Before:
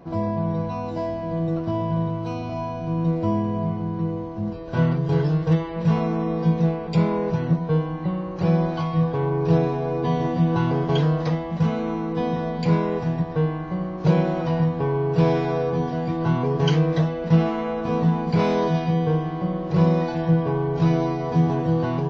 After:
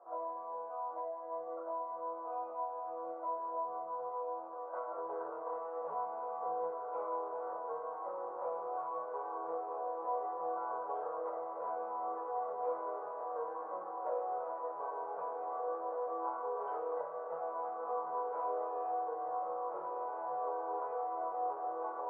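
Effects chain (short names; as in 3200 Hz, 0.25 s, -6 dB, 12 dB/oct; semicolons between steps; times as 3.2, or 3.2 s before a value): elliptic band-pass 510–1300 Hz, stop band 70 dB; compressor, threshold -32 dBFS, peak gain reduction 10.5 dB; chorus voices 2, 0.4 Hz, delay 17 ms, depth 2.5 ms; diffused feedback echo 1.826 s, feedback 67%, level -7 dB; on a send at -3 dB: reverb, pre-delay 3 ms; on the sum: gain -2.5 dB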